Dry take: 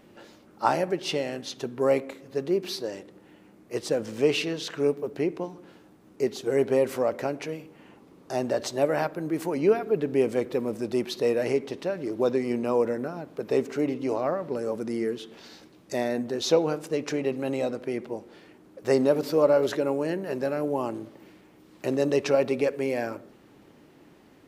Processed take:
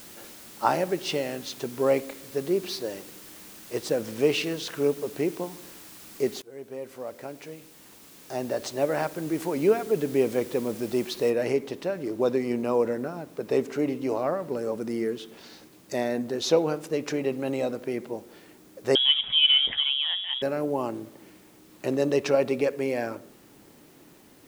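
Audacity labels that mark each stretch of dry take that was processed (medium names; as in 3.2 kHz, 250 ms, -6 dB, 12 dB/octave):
6.420000	9.350000	fade in, from -22.5 dB
11.300000	11.300000	noise floor step -47 dB -60 dB
18.950000	20.420000	frequency inversion carrier 3.6 kHz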